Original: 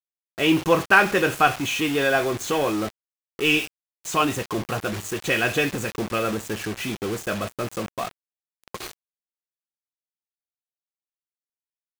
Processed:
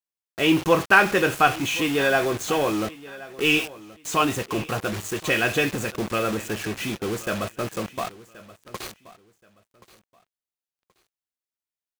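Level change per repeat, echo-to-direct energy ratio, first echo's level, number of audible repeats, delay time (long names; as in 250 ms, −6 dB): −12.5 dB, −19.0 dB, −19.0 dB, 2, 1,077 ms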